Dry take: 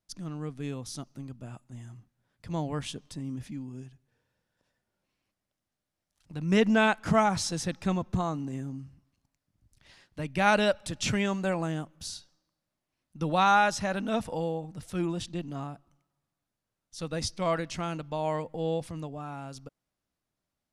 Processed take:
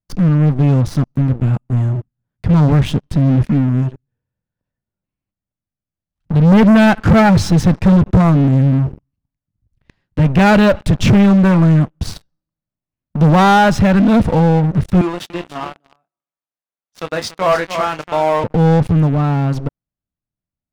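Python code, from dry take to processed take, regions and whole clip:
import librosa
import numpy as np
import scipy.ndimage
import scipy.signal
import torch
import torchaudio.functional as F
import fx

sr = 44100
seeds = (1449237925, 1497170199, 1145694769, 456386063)

y = fx.chain(x, sr, fx.highpass(hz=610.0, slope=12),
    fx.doubler(ms=26.0, db=-8.5),
    fx.echo_single(ms=287, db=-10.0), at=(15.01, 18.44))
y = fx.bass_treble(y, sr, bass_db=12, treble_db=-7)
y = fx.leveller(y, sr, passes=5)
y = fx.high_shelf(y, sr, hz=3600.0, db=-8.5)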